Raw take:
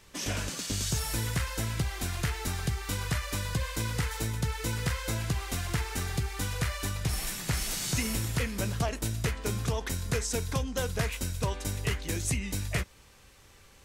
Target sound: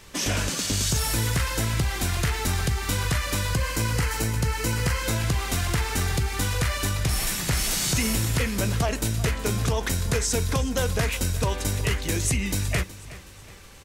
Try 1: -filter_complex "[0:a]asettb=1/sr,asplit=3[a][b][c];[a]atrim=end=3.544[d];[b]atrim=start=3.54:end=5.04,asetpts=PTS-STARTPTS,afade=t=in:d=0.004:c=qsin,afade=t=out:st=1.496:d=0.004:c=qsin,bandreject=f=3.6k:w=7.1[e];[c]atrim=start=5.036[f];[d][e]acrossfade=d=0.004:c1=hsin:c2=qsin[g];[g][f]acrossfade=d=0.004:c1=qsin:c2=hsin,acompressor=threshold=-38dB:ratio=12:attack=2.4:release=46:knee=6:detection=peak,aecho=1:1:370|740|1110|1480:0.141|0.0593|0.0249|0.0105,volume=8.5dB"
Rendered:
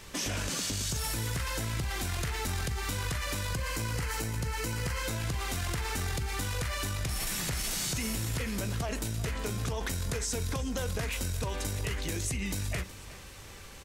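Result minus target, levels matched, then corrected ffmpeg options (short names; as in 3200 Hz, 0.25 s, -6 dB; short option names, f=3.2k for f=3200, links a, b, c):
compressor: peak gain reduction +10.5 dB
-filter_complex "[0:a]asettb=1/sr,asplit=3[a][b][c];[a]atrim=end=3.544[d];[b]atrim=start=3.54:end=5.04,asetpts=PTS-STARTPTS,afade=t=in:d=0.004:c=qsin,afade=t=out:st=1.496:d=0.004:c=qsin,bandreject=f=3.6k:w=7.1[e];[c]atrim=start=5.036[f];[d][e]acrossfade=d=0.004:c1=hsin:c2=qsin[g];[g][f]acrossfade=d=0.004:c1=qsin:c2=hsin,acompressor=threshold=-26.5dB:ratio=12:attack=2.4:release=46:knee=6:detection=peak,aecho=1:1:370|740|1110|1480:0.141|0.0593|0.0249|0.0105,volume=8.5dB"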